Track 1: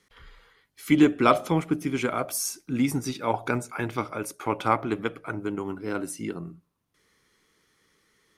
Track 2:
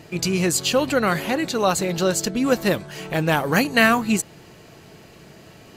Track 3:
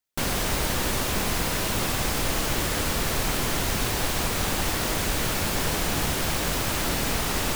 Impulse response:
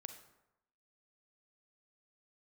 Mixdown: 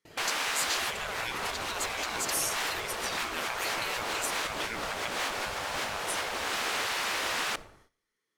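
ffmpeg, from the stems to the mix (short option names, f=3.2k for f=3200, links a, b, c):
-filter_complex "[0:a]highpass=110,volume=-2.5dB,asplit=3[a][b][c];[b]volume=-4.5dB[d];[1:a]asubboost=boost=6.5:cutoff=83,adelay=50,volume=-6dB[e];[2:a]aemphasis=mode=reproduction:type=50fm,volume=-0.5dB,asplit=2[f][g];[g]volume=-5dB[h];[c]apad=whole_len=333241[i];[f][i]sidechaincompress=threshold=-40dB:ratio=8:attack=21:release=114[j];[a][e]amix=inputs=2:normalize=0,bandreject=f=69.52:t=h:w=4,bandreject=f=139.04:t=h:w=4,bandreject=f=208.56:t=h:w=4,acompressor=threshold=-25dB:ratio=6,volume=0dB[k];[3:a]atrim=start_sample=2205[l];[d][h]amix=inputs=2:normalize=0[m];[m][l]afir=irnorm=-1:irlink=0[n];[j][k][n]amix=inputs=3:normalize=0,afftfilt=real='re*lt(hypot(re,im),0.112)':imag='im*lt(hypot(re,im),0.112)':win_size=1024:overlap=0.75,agate=range=-17dB:threshold=-58dB:ratio=16:detection=peak,equalizer=f=150:t=o:w=1.6:g=-5"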